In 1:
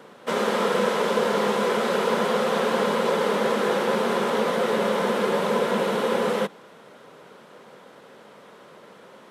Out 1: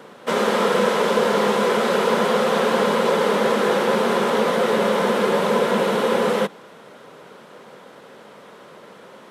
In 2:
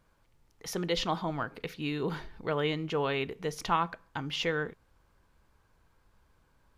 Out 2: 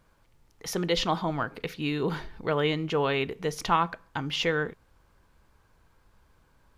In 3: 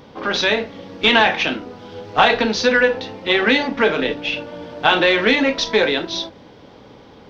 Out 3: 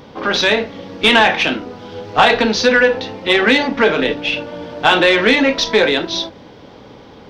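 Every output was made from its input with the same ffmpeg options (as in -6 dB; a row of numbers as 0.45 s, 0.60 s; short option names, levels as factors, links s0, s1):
-af "acontrast=27,volume=0.891"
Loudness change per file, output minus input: +4.0 LU, +4.0 LU, +3.0 LU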